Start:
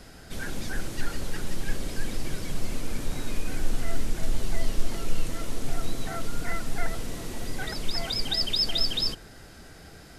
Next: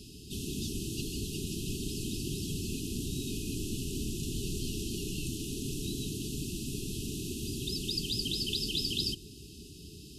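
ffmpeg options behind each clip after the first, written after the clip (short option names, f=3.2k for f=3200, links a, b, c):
-af "afftfilt=real='re*(1-between(b*sr/4096,440,2500))':imag='im*(1-between(b*sr/4096,440,2500))':win_size=4096:overlap=0.75,highpass=55,afftfilt=real='re*lt(hypot(re,im),0.224)':imag='im*lt(hypot(re,im),0.224)':win_size=1024:overlap=0.75,volume=1.5dB"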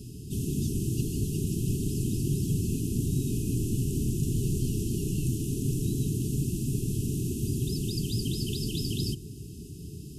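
-af "equalizer=f=125:t=o:w=1:g=9,equalizer=f=2k:t=o:w=1:g=-8,equalizer=f=4k:t=o:w=1:g=-11,volume=4dB"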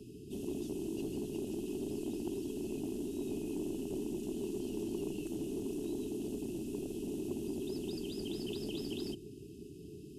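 -filter_complex "[0:a]afftfilt=real='re*lt(hypot(re,im),0.282)':imag='im*lt(hypot(re,im),0.282)':win_size=1024:overlap=0.75,asoftclip=type=tanh:threshold=-24dB,acrossover=split=290 2400:gain=0.126 1 0.141[a][b][c];[a][b][c]amix=inputs=3:normalize=0,volume=3dB"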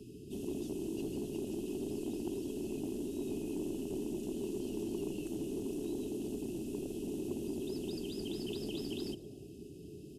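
-filter_complex "[0:a]asplit=4[a][b][c][d];[b]adelay=109,afreqshift=120,volume=-23.5dB[e];[c]adelay=218,afreqshift=240,volume=-29.7dB[f];[d]adelay=327,afreqshift=360,volume=-35.9dB[g];[a][e][f][g]amix=inputs=4:normalize=0"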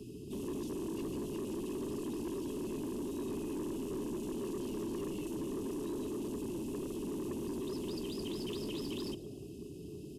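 -af "asoftclip=type=tanh:threshold=-37.5dB,volume=3.5dB"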